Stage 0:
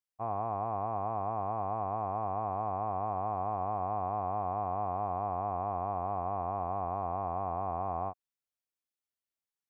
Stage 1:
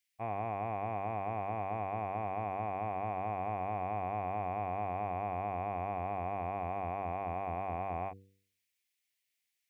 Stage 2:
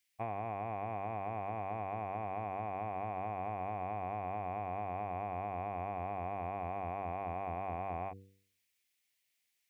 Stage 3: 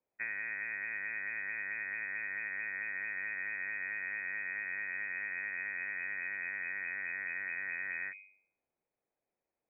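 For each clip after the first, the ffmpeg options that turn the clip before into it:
ffmpeg -i in.wav -af "highshelf=frequency=1600:width_type=q:width=3:gain=9.5,bandreject=frequency=96.85:width_type=h:width=4,bandreject=frequency=193.7:width_type=h:width=4,bandreject=frequency=290.55:width_type=h:width=4,bandreject=frequency=387.4:width_type=h:width=4,bandreject=frequency=484.25:width_type=h:width=4" out.wav
ffmpeg -i in.wav -af "acompressor=threshold=-38dB:ratio=6,volume=3dB" out.wav
ffmpeg -i in.wav -af "lowpass=frequency=2200:width_type=q:width=0.5098,lowpass=frequency=2200:width_type=q:width=0.6013,lowpass=frequency=2200:width_type=q:width=0.9,lowpass=frequency=2200:width_type=q:width=2.563,afreqshift=-2600" out.wav

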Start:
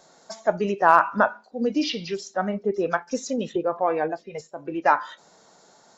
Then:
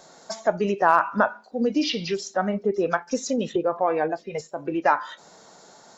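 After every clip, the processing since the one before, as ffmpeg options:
ffmpeg -i in.wav -af "acompressor=threshold=-31dB:ratio=1.5,volume=5dB" out.wav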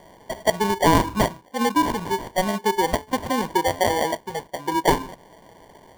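ffmpeg -i in.wav -af "acrusher=samples=34:mix=1:aa=0.000001,equalizer=frequency=980:width_type=o:width=0.34:gain=12" out.wav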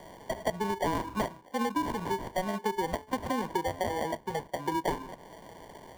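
ffmpeg -i in.wav -filter_complex "[0:a]acrossover=split=240|2300[link_01][link_02][link_03];[link_01]acompressor=threshold=-39dB:ratio=4[link_04];[link_02]acompressor=threshold=-30dB:ratio=4[link_05];[link_03]acompressor=threshold=-45dB:ratio=4[link_06];[link_04][link_05][link_06]amix=inputs=3:normalize=0" out.wav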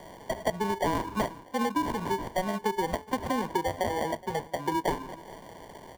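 ffmpeg -i in.wav -af "aecho=1:1:421:0.1,volume=2dB" out.wav

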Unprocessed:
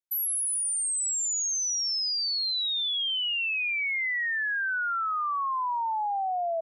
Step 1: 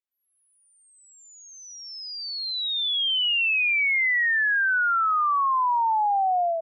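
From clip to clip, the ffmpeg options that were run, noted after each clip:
ffmpeg -i in.wav -af "lowpass=frequency=3400:width=0.5412,lowpass=frequency=3400:width=1.3066,dynaudnorm=framelen=100:gausssize=5:maxgain=11dB,volume=-4.5dB" out.wav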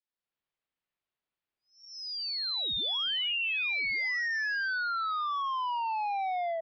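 ffmpeg -i in.wav -af "adynamicequalizer=threshold=0.0141:dfrequency=1100:dqfactor=0.78:tfrequency=1100:tqfactor=0.78:attack=5:release=100:ratio=0.375:range=2.5:mode=cutabove:tftype=bell,aresample=11025,asoftclip=type=tanh:threshold=-29.5dB,aresample=44100" out.wav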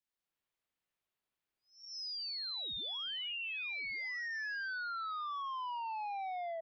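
ffmpeg -i in.wav -af "acompressor=threshold=-41dB:ratio=4" out.wav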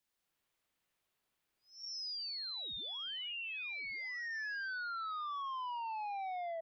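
ffmpeg -i in.wav -af "alimiter=level_in=21dB:limit=-24dB:level=0:latency=1,volume=-21dB,volume=6.5dB" out.wav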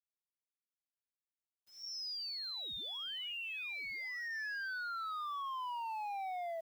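ffmpeg -i in.wav -af "acrusher=bits=10:mix=0:aa=0.000001" out.wav

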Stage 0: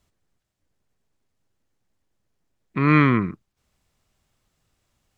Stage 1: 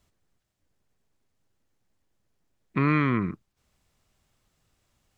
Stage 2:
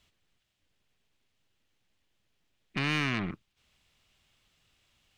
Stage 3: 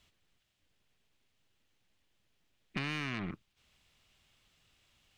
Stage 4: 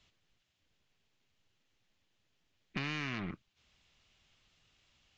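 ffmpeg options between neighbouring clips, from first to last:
ffmpeg -i in.wav -af "acompressor=threshold=-19dB:ratio=6" out.wav
ffmpeg -i in.wav -af "aeval=exprs='(tanh(25.1*val(0)+0.45)-tanh(0.45))/25.1':channel_layout=same,equalizer=frequency=3000:width=0.94:gain=13,volume=-1.5dB" out.wav
ffmpeg -i in.wav -af "acompressor=threshold=-33dB:ratio=6" out.wav
ffmpeg -i in.wav -af "volume=-1dB" -ar 16000 -c:a libvorbis -b:a 64k out.ogg

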